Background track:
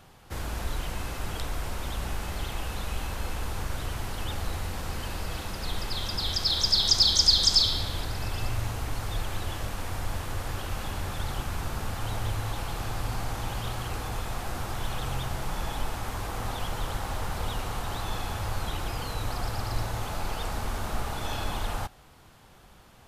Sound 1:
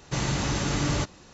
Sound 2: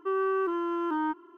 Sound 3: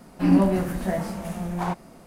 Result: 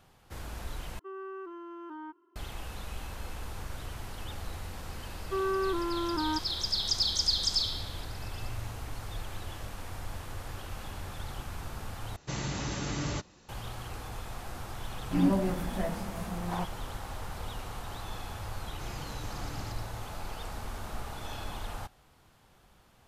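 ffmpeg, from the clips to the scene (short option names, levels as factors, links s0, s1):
-filter_complex "[2:a]asplit=2[s0][s1];[1:a]asplit=2[s2][s3];[0:a]volume=0.422[s4];[s3]acrusher=bits=11:mix=0:aa=0.000001[s5];[s4]asplit=3[s6][s7][s8];[s6]atrim=end=0.994[s9];[s0]atrim=end=1.37,asetpts=PTS-STARTPTS,volume=0.2[s10];[s7]atrim=start=2.356:end=12.164[s11];[s2]atrim=end=1.33,asetpts=PTS-STARTPTS,volume=0.422[s12];[s8]atrim=start=13.486[s13];[s1]atrim=end=1.37,asetpts=PTS-STARTPTS,volume=0.75,afade=t=in:d=0.004:c=hsin,afade=t=out:st=1.366:d=0.004:c=hsin,adelay=5260[s14];[3:a]atrim=end=2.06,asetpts=PTS-STARTPTS,volume=0.422,afade=t=in:d=0.004:c=hsin,afade=t=out:st=2.056:d=0.004:c=hsin,adelay=14910[s15];[s5]atrim=end=1.33,asetpts=PTS-STARTPTS,volume=0.126,afade=t=in:d=0.004:c=hsin,afade=t=out:st=1.326:d=0.004:c=hsin,adelay=18680[s16];[s9][s10]acrossfade=d=0.004:c1=hsin:c2=hsin[s17];[s17][s11]acrossfade=d=0.004:c1=hsin:c2=hsin[s18];[s18][s12]acrossfade=d=0.004:c1=hsin:c2=hsin[s19];[s19][s13]acrossfade=d=0.004:c1=hsin:c2=hsin[s20];[s20][s14][s15][s16]amix=inputs=4:normalize=0"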